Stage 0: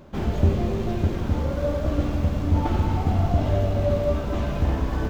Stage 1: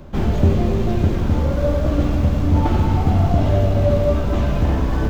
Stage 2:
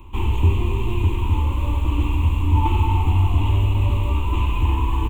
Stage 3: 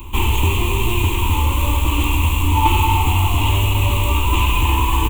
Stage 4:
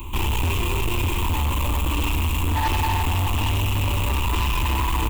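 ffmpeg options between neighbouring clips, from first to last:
-filter_complex "[0:a]lowshelf=f=96:g=11.5,acrossover=split=110|2000[a][b][c];[a]alimiter=limit=-21dB:level=0:latency=1[d];[d][b][c]amix=inputs=3:normalize=0,volume=4.5dB"
-af "firequalizer=gain_entry='entry(100,0);entry(150,-18);entry(330,-3);entry(630,-25);entry(950,9);entry(1500,-20);entry(2600,9);entry(5100,-23);entry(7300,1)':delay=0.05:min_phase=1"
-filter_complex "[0:a]acrossover=split=430[a][b];[a]alimiter=limit=-18dB:level=0:latency=1:release=345[c];[b]crystalizer=i=3.5:c=0[d];[c][d]amix=inputs=2:normalize=0,volume=7.5dB"
-af "asoftclip=type=tanh:threshold=-18.5dB"

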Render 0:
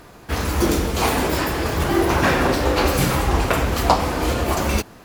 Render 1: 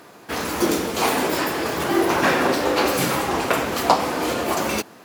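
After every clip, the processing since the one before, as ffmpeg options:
-af "highpass=210"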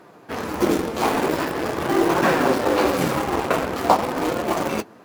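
-filter_complex "[0:a]highshelf=f=2.2k:g=-11.5,flanger=delay=5.2:depth=9.2:regen=-45:speed=0.45:shape=triangular,asplit=2[a][b];[b]acrusher=bits=3:mix=0:aa=0.000001,volume=-10dB[c];[a][c]amix=inputs=2:normalize=0,volume=3.5dB"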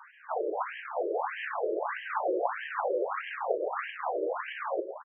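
-af "acompressor=threshold=-27dB:ratio=6,aecho=1:1:166|332|498|664:0.335|0.131|0.0509|0.0199,afftfilt=real='re*between(b*sr/1024,430*pow(2300/430,0.5+0.5*sin(2*PI*1.6*pts/sr))/1.41,430*pow(2300/430,0.5+0.5*sin(2*PI*1.6*pts/sr))*1.41)':imag='im*between(b*sr/1024,430*pow(2300/430,0.5+0.5*sin(2*PI*1.6*pts/sr))/1.41,430*pow(2300/430,0.5+0.5*sin(2*PI*1.6*pts/sr))*1.41)':win_size=1024:overlap=0.75,volume=5dB"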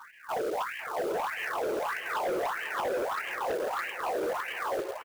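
-af "volume=30.5dB,asoftclip=hard,volume=-30.5dB,acrusher=bits=3:mode=log:mix=0:aa=0.000001,aecho=1:1:504|1008|1512|2016|2520:0.188|0.0998|0.0529|0.028|0.0149,volume=2.5dB"

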